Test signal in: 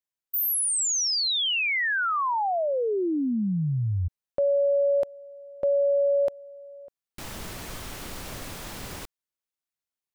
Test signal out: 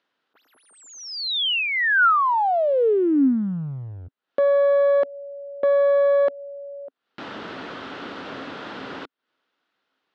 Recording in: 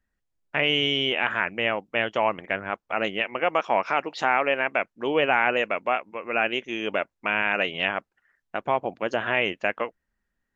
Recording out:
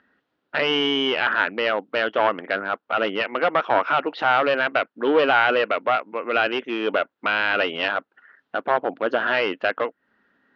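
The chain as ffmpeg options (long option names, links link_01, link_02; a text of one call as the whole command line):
ffmpeg -i in.wav -af "acompressor=mode=upward:threshold=-35dB:ratio=1.5:attack=5.1:release=152:knee=2.83:detection=peak,aeval=exprs='clip(val(0),-1,0.0708)':channel_layout=same,highpass=240,equalizer=frequency=270:width_type=q:width=4:gain=7,equalizer=frequency=450:width_type=q:width=4:gain=3,equalizer=frequency=1400:width_type=q:width=4:gain=6,equalizer=frequency=2300:width_type=q:width=4:gain=-5,lowpass=frequency=3600:width=0.5412,lowpass=frequency=3600:width=1.3066,volume=5dB" out.wav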